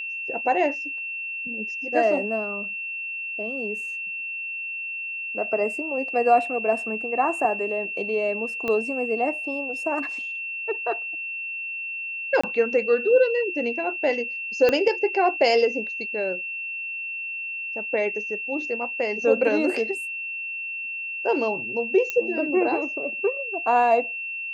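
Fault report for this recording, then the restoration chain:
tone 2700 Hz -29 dBFS
8.68 pop -15 dBFS
12.41–12.44 gap 25 ms
14.69 pop -9 dBFS
22.1 pop -12 dBFS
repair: de-click; notch 2700 Hz, Q 30; interpolate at 12.41, 25 ms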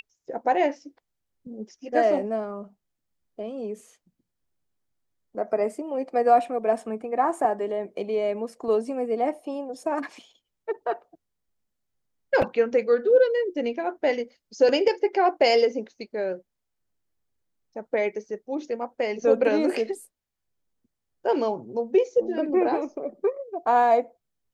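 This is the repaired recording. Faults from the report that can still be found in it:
8.68 pop
14.69 pop

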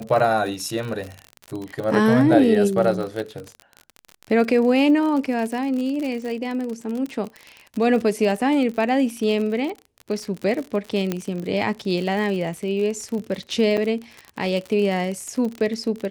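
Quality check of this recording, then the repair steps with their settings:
crackle 52/s -27 dBFS
11.12 pop -10 dBFS
13.77–13.78 gap 6.2 ms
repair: de-click; interpolate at 13.77, 6.2 ms

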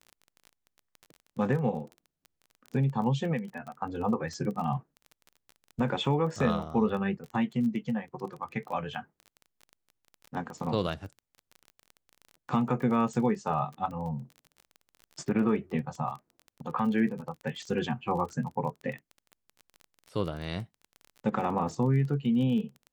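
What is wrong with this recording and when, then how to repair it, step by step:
crackle 24/s -37 dBFS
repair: de-click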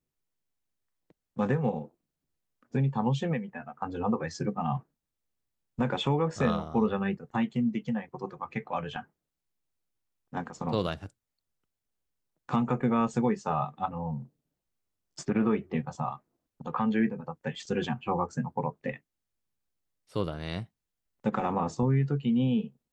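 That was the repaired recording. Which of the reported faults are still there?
none

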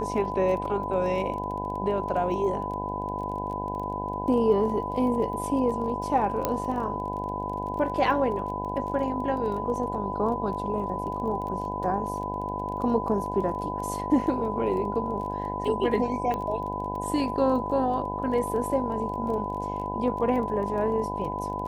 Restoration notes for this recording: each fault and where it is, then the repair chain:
buzz 50 Hz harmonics 20 -34 dBFS
crackle 21/s -35 dBFS
tone 1000 Hz -33 dBFS
6.45 pop -10 dBFS
16.34 pop -19 dBFS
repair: de-click; de-hum 50 Hz, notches 20; notch 1000 Hz, Q 30

